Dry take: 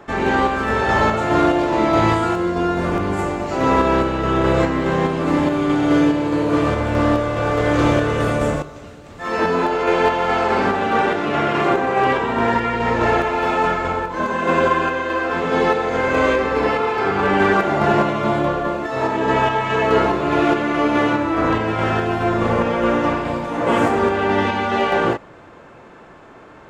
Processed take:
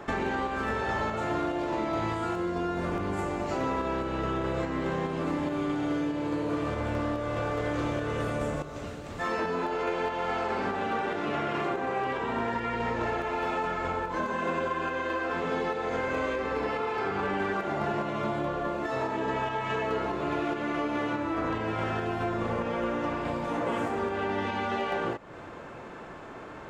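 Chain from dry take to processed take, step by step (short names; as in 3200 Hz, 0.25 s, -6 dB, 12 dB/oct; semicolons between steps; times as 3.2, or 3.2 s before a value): compressor, threshold -28 dBFS, peak gain reduction 15.5 dB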